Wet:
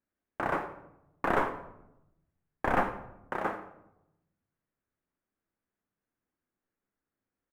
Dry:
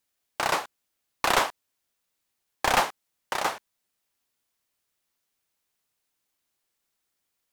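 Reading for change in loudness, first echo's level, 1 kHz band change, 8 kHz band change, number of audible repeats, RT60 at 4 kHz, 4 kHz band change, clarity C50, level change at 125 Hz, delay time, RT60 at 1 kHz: -6.0 dB, -18.0 dB, -5.0 dB, under -25 dB, 1, 0.50 s, -21.5 dB, 10.5 dB, +2.0 dB, 87 ms, 0.80 s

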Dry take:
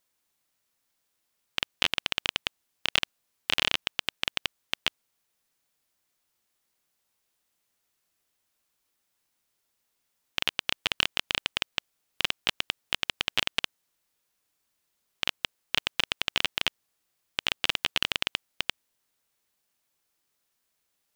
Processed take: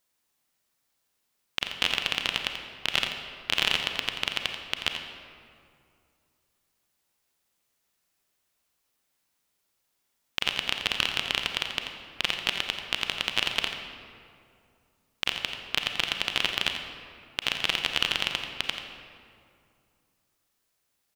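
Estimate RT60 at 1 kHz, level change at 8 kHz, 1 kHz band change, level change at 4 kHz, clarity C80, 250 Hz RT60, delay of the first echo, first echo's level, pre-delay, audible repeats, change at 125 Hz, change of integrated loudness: 2.3 s, +1.0 dB, +2.0 dB, +1.5 dB, 5.0 dB, 2.8 s, 86 ms, -10.0 dB, 30 ms, 1, +2.0 dB, +1.0 dB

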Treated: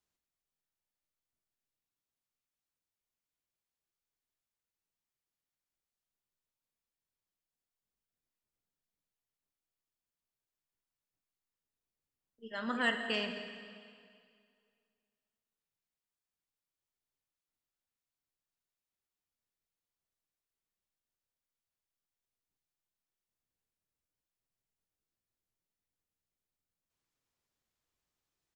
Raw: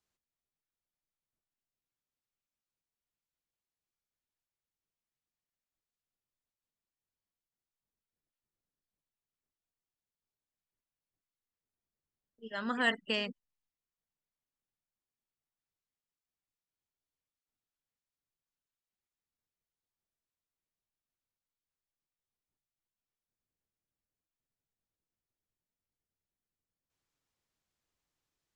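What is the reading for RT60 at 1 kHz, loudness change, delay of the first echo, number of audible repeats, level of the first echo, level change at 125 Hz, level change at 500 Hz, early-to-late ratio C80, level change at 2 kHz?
2.2 s, -1.5 dB, 0.17 s, 1, -16.5 dB, n/a, -1.0 dB, 7.5 dB, -1.0 dB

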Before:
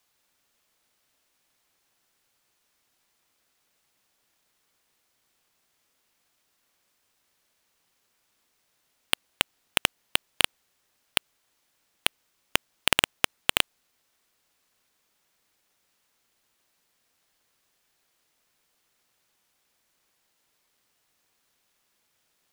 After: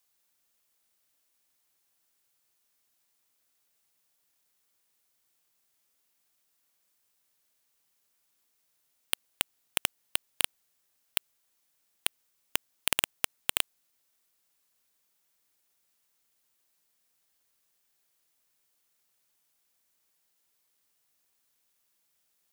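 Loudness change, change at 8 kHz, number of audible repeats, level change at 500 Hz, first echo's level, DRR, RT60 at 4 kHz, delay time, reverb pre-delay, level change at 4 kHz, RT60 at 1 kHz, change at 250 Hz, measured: -5.0 dB, -1.5 dB, none, -9.0 dB, none, none, none, none, none, -7.0 dB, none, -9.0 dB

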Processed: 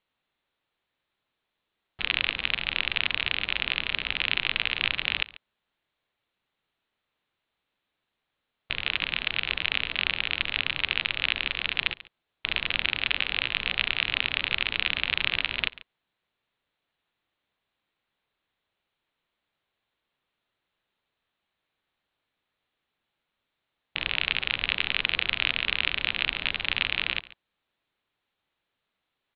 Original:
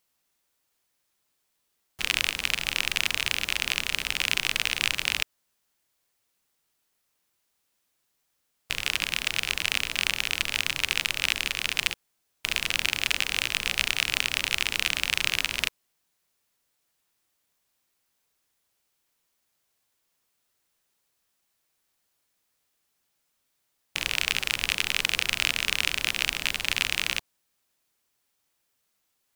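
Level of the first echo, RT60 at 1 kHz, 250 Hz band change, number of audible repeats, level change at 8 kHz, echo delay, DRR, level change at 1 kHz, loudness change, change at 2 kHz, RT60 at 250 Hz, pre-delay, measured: -19.0 dB, none, 0.0 dB, 1, under -40 dB, 0.14 s, none, 0.0 dB, -0.5 dB, 0.0 dB, none, none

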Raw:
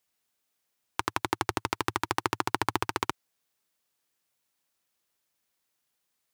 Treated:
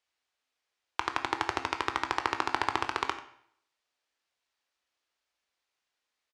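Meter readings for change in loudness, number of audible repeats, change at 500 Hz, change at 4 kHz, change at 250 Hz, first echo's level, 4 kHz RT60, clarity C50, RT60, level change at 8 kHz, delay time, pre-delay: -0.5 dB, 1, -3.0 dB, -1.0 dB, -5.0 dB, -15.0 dB, 0.55 s, 10.0 dB, 0.65 s, -7.0 dB, 91 ms, 15 ms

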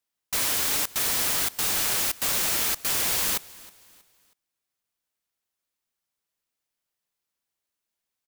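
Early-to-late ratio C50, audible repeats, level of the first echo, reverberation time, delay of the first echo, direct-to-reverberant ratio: none, 2, -21.5 dB, none, 0.319 s, none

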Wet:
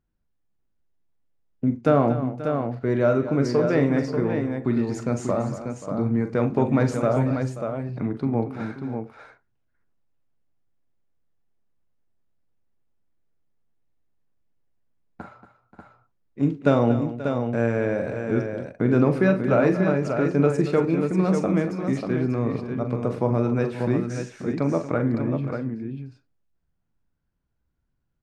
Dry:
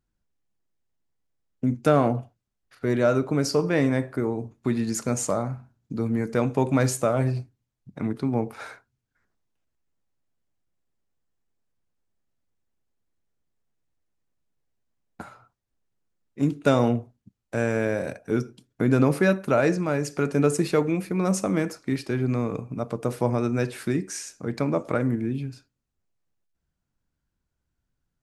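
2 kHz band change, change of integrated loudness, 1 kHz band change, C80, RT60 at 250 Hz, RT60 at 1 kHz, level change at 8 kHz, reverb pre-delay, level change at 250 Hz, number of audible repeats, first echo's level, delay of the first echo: -0.5 dB, +1.5 dB, +1.0 dB, none, none, none, under -10 dB, none, +2.5 dB, 4, -10.5 dB, 43 ms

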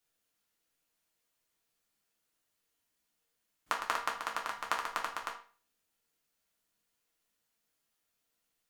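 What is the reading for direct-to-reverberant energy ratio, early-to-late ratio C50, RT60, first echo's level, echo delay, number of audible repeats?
-2.0 dB, 9.0 dB, 0.40 s, none, none, none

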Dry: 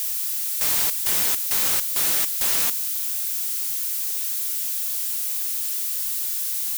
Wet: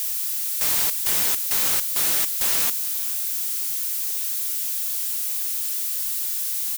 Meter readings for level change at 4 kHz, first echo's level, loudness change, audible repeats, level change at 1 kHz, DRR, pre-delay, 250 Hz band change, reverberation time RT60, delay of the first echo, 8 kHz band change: 0.0 dB, -19.5 dB, 0.0 dB, 2, 0.0 dB, none, none, 0.0 dB, none, 0.439 s, 0.0 dB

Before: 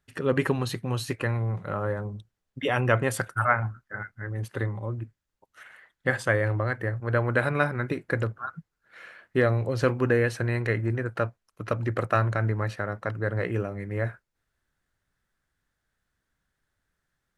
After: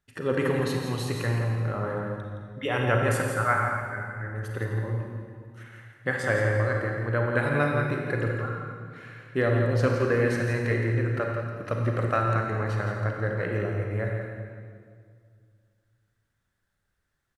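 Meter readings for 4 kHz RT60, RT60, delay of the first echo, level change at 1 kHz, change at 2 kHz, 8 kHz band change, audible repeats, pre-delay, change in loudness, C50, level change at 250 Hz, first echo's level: 1.7 s, 2.1 s, 0.168 s, +0.5 dB, 0.0 dB, -0.5 dB, 1, 34 ms, +0.5 dB, 0.5 dB, +0.5 dB, -8.0 dB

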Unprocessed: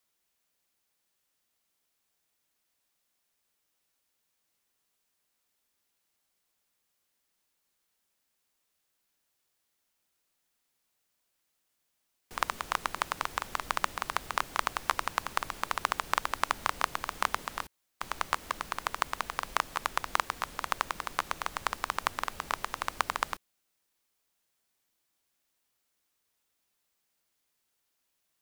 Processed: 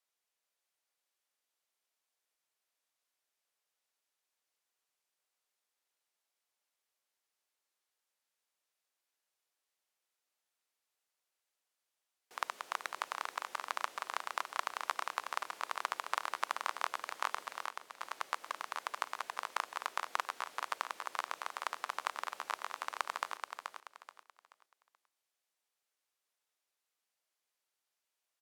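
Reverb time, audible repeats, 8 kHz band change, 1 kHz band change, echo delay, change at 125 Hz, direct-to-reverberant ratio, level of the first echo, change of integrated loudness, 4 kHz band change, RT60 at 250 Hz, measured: none, 3, -7.5 dB, -6.0 dB, 0.43 s, under -25 dB, none, -6.0 dB, -6.5 dB, -6.5 dB, none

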